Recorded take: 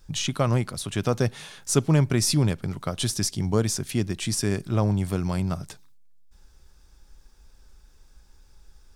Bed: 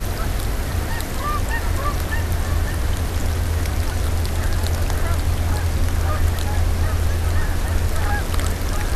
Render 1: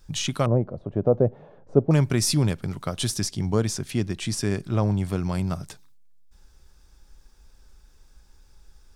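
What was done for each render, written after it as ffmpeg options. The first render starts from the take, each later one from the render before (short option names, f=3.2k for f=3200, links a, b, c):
-filter_complex "[0:a]asettb=1/sr,asplit=3[a][b][c];[a]atrim=end=0.464[d];[b]atrim=start=0.46:end=1.91,asetpts=PTS-STARTPTS,afade=t=in:d=0.004:c=qsin,afade=t=out:st=1.446:d=0.004:c=qsin,lowpass=f=580:t=q:w=2.5[e];[c]atrim=start=1.906[f];[d][e]acrossfade=d=0.004:c1=hsin:c2=qsin[g];[g][f]acrossfade=d=0.004:c1=qsin:c2=hsin,asettb=1/sr,asplit=3[h][i][j];[h]atrim=end=3.214[k];[i]atrim=start=3.21:end=5.35,asetpts=PTS-STARTPTS,afade=t=in:d=0.004:c=qsin,afade=t=out:st=2.136:d=0.004:c=qsin,highshelf=f=8k:g=-7.5[l];[j]atrim=start=5.346[m];[k][l]acrossfade=d=0.004:c1=hsin:c2=qsin[n];[n][m]acrossfade=d=0.004:c1=qsin:c2=hsin"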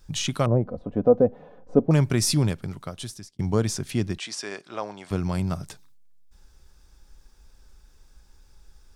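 -filter_complex "[0:a]asettb=1/sr,asplit=3[a][b][c];[a]atrim=end=0.654[d];[b]atrim=start=0.65:end=1.86,asetpts=PTS-STARTPTS,afade=t=in:d=0.004:c=qsin,afade=t=out:st=1.206:d=0.004:c=qsin,aecho=1:1:4:0.66,atrim=end_sample=53361[e];[c]atrim=start=1.856[f];[d][e]acrossfade=d=0.004:c1=hsin:c2=qsin[g];[g][f]acrossfade=d=0.004:c1=qsin:c2=hsin,asettb=1/sr,asplit=3[h][i][j];[h]atrim=end=4.184[k];[i]atrim=start=4.18:end=5.11,asetpts=PTS-STARTPTS,afade=t=in:d=0.004:c=qsin,afade=t=out:st=0.926:d=0.004:c=qsin,highpass=590,lowpass=6.7k[l];[j]atrim=start=5.106[m];[k][l]acrossfade=d=0.004:c1=hsin:c2=qsin[n];[n][m]acrossfade=d=0.004:c1=qsin:c2=hsin,asplit=2[o][p];[o]atrim=end=3.39,asetpts=PTS-STARTPTS,afade=t=out:st=2.38:d=1.01[q];[p]atrim=start=3.39,asetpts=PTS-STARTPTS,afade=t=in:d=0.004:c=hsin[r];[q][r]concat=n=2:v=0:a=1"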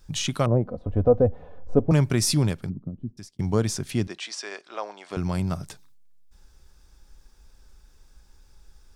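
-filter_complex "[0:a]asettb=1/sr,asplit=3[a][b][c];[a]atrim=end=0.864[d];[b]atrim=start=0.86:end=1.92,asetpts=PTS-STARTPTS,afade=t=in:d=0.004:c=qsin,afade=t=out:st=1.056:d=0.004:c=qsin,lowshelf=f=120:t=q:w=1.5:g=14[e];[c]atrim=start=1.916[f];[d][e]acrossfade=d=0.004:c1=hsin:c2=qsin[g];[g][f]acrossfade=d=0.004:c1=qsin:c2=hsin,asplit=3[h][i][j];[h]afade=t=out:st=2.68:d=0.02[k];[i]lowpass=f=240:t=q:w=2.6,afade=t=in:st=2.68:d=0.02,afade=t=out:st=3.17:d=0.02[l];[j]afade=t=in:st=3.17:d=0.02[m];[k][l][m]amix=inputs=3:normalize=0,asettb=1/sr,asplit=3[n][o][p];[n]atrim=end=4.074[q];[o]atrim=start=4.07:end=5.17,asetpts=PTS-STARTPTS,afade=t=in:d=0.004:c=qsin,afade=t=out:st=1.096:d=0.004:c=qsin,highpass=420,lowpass=7.6k[r];[p]atrim=start=5.166[s];[q][r]acrossfade=d=0.004:c1=hsin:c2=qsin[t];[t][s]acrossfade=d=0.004:c1=qsin:c2=hsin"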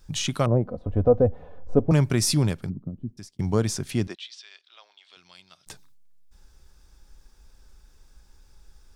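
-filter_complex "[0:a]asplit=3[a][b][c];[a]afade=t=out:st=4.14:d=0.02[d];[b]bandpass=f=3.5k:t=q:w=3.5,afade=t=in:st=4.14:d=0.02,afade=t=out:st=5.66:d=0.02[e];[c]afade=t=in:st=5.66:d=0.02[f];[d][e][f]amix=inputs=3:normalize=0"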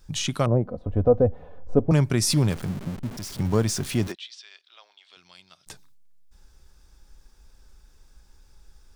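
-filter_complex "[0:a]asettb=1/sr,asplit=3[a][b][c];[a]atrim=end=2.304[d];[b]atrim=start=2.3:end=4.12,asetpts=PTS-STARTPTS,afade=t=in:d=0.004:c=qsin,afade=t=out:st=1.816:d=0.004:c=qsin,aeval=exprs='val(0)+0.5*0.0237*sgn(val(0))':c=same[e];[c]atrim=start=4.116[f];[d][e]acrossfade=d=0.004:c1=hsin:c2=qsin[g];[g][f]acrossfade=d=0.004:c1=qsin:c2=hsin"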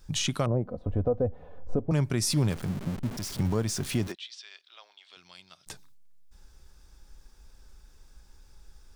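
-af "alimiter=limit=-17dB:level=0:latency=1:release=474"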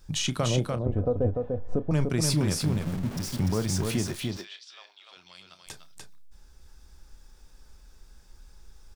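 -filter_complex "[0:a]asplit=2[a][b];[b]adelay=32,volume=-13dB[c];[a][c]amix=inputs=2:normalize=0,asplit=2[d][e];[e]aecho=0:1:295:0.631[f];[d][f]amix=inputs=2:normalize=0"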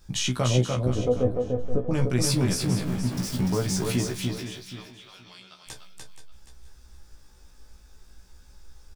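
-filter_complex "[0:a]asplit=2[a][b];[b]adelay=16,volume=-3dB[c];[a][c]amix=inputs=2:normalize=0,aecho=1:1:476|952|1428:0.266|0.0532|0.0106"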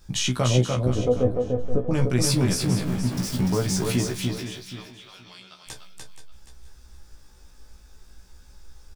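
-af "volume=2dB"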